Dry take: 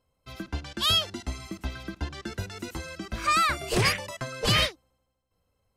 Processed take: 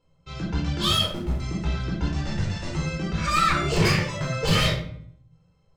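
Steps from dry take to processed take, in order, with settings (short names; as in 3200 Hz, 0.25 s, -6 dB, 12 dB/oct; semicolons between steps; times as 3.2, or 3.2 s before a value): 2.05–2.7 minimum comb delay 1.1 ms; steep low-pass 8000 Hz 48 dB/oct; bell 170 Hz +11 dB 0.61 oct; de-hum 120.8 Hz, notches 34; 0.91–1.4 backlash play -30 dBFS; 3.36–4.3 companded quantiser 8-bit; soft clip -23 dBFS, distortion -9 dB; shoebox room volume 830 m³, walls furnished, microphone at 4.3 m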